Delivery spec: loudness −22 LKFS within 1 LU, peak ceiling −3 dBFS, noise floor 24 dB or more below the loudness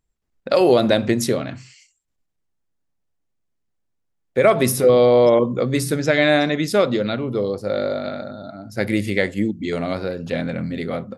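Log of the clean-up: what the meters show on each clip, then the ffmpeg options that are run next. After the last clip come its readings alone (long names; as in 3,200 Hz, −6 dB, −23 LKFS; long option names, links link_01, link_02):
integrated loudness −19.5 LKFS; sample peak −2.0 dBFS; target loudness −22.0 LKFS
→ -af "volume=-2.5dB"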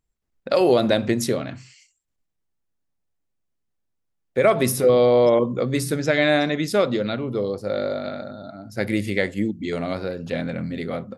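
integrated loudness −22.0 LKFS; sample peak −4.5 dBFS; background noise floor −76 dBFS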